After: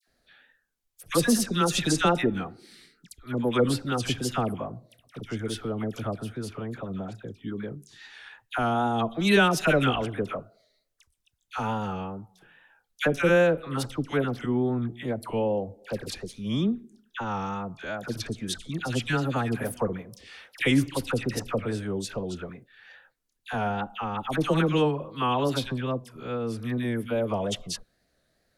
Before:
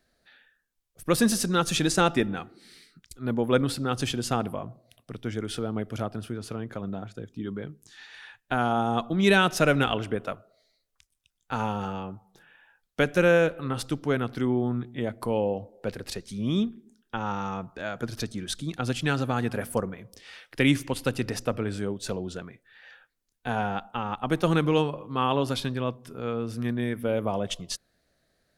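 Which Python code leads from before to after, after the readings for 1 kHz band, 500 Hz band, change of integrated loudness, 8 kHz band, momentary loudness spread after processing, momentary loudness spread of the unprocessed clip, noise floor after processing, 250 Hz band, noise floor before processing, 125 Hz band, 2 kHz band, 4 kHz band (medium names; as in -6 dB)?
0.0 dB, 0.0 dB, 0.0 dB, 0.0 dB, 15 LU, 15 LU, -74 dBFS, 0.0 dB, -76 dBFS, 0.0 dB, 0.0 dB, 0.0 dB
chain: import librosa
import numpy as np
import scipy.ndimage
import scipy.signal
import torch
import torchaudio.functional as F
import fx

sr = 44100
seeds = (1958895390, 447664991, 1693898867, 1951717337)

y = fx.dispersion(x, sr, late='lows', ms=75.0, hz=1300.0)
y = fx.vibrato(y, sr, rate_hz=2.4, depth_cents=60.0)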